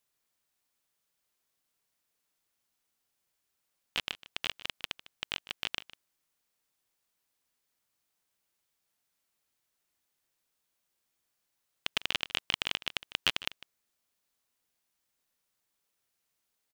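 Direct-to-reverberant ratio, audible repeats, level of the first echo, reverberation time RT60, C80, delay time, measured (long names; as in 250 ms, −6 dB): no reverb audible, 1, −17.0 dB, no reverb audible, no reverb audible, 152 ms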